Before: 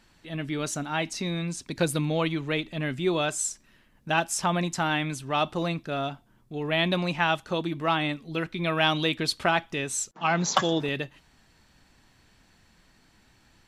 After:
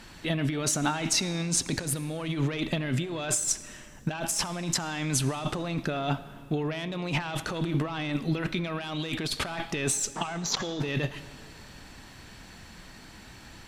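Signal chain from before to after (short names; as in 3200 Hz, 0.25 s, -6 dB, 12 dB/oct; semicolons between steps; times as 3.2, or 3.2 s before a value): tube stage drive 17 dB, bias 0.3; negative-ratio compressor -37 dBFS, ratio -1; digital reverb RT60 2.3 s, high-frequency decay 0.85×, pre-delay 25 ms, DRR 15 dB; gain +6.5 dB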